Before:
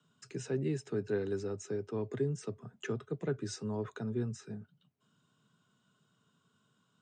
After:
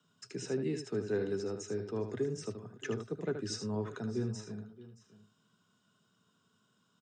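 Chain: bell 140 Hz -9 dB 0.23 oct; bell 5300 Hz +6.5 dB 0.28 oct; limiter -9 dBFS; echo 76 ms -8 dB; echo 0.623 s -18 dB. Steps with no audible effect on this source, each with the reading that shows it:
limiter -9 dBFS: input peak -22.0 dBFS

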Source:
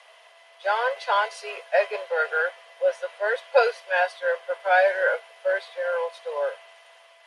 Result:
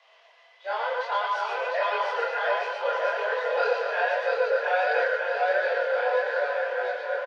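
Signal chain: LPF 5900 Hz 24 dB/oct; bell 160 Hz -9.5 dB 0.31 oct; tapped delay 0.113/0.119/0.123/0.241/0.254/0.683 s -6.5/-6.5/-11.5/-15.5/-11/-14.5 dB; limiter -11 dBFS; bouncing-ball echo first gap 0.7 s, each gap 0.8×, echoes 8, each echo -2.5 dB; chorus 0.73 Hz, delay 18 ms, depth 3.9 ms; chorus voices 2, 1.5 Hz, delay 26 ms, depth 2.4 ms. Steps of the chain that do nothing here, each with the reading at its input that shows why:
bell 160 Hz: input band starts at 380 Hz

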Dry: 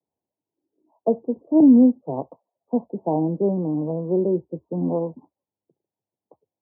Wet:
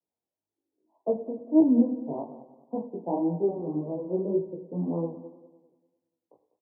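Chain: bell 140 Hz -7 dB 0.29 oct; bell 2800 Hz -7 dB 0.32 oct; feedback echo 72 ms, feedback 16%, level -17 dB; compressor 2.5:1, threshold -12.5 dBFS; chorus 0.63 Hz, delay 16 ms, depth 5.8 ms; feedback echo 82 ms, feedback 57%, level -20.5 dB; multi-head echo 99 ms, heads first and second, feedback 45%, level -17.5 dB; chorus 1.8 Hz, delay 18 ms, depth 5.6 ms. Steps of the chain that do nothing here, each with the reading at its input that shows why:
bell 2800 Hz: input band ends at 960 Hz

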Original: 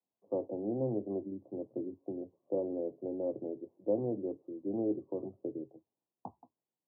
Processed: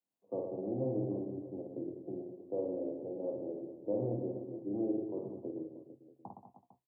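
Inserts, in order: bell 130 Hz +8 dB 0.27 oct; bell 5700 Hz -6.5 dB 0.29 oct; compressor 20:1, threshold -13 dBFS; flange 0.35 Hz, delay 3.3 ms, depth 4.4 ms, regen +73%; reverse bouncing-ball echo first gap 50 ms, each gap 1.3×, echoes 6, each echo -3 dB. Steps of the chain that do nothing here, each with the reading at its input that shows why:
bell 5700 Hz: input band ends at 850 Hz; compressor, threshold -13 dBFS: input peak -19.5 dBFS

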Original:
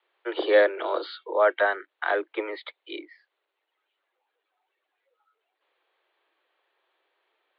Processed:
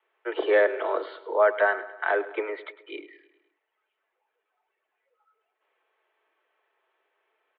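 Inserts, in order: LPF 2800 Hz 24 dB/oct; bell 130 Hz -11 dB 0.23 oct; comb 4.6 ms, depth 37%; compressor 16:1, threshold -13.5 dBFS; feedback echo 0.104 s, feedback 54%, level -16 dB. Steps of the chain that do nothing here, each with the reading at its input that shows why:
bell 130 Hz: input band starts at 270 Hz

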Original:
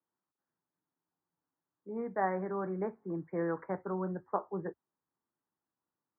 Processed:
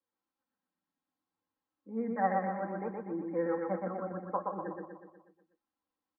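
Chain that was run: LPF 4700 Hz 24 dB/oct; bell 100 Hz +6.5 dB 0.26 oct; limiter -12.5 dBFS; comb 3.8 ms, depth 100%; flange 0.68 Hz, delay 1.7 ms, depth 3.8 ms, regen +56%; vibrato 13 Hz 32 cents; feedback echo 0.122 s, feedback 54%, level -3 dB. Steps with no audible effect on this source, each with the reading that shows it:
LPF 4700 Hz: input band ends at 1900 Hz; limiter -12.5 dBFS: input peak -16.5 dBFS

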